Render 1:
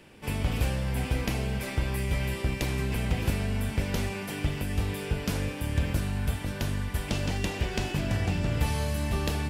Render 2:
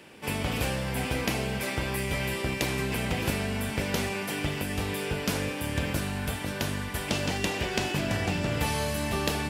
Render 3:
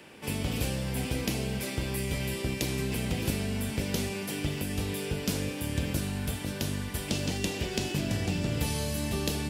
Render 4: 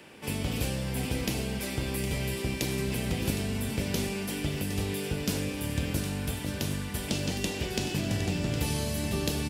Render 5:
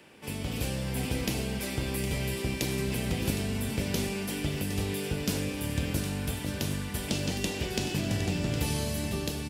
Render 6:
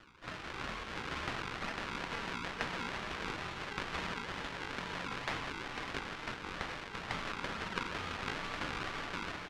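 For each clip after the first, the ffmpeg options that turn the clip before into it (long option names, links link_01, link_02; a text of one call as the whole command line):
ffmpeg -i in.wav -af "highpass=frequency=240:poles=1,volume=4.5dB" out.wav
ffmpeg -i in.wav -filter_complex "[0:a]acrossover=split=490|3000[link_01][link_02][link_03];[link_02]acompressor=threshold=-51dB:ratio=2[link_04];[link_01][link_04][link_03]amix=inputs=3:normalize=0" out.wav
ffmpeg -i in.wav -af "aecho=1:1:762:0.299" out.wav
ffmpeg -i in.wav -af "dynaudnorm=framelen=130:gausssize=9:maxgain=4dB,volume=-4dB" out.wav
ffmpeg -i in.wav -af "acrusher=samples=25:mix=1:aa=0.000001:lfo=1:lforange=25:lforate=2.2,highpass=760,lowpass=3800,aeval=exprs='val(0)*sin(2*PI*570*n/s)':channel_layout=same,volume=4dB" out.wav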